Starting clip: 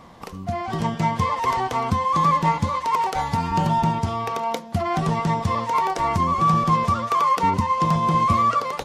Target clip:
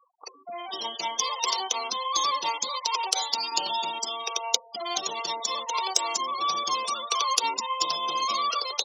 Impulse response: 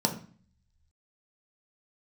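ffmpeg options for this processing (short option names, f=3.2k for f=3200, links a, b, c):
-af "highpass=f=360:w=0.5412,highpass=f=360:w=1.3066,afftfilt=real='re*gte(hypot(re,im),0.0224)':imag='im*gte(hypot(re,im),0.0224)':win_size=1024:overlap=0.75,equalizer=f=7.6k:w=1.9:g=5,aexciter=amount=10.4:drive=8.3:freq=2.9k,volume=-8.5dB"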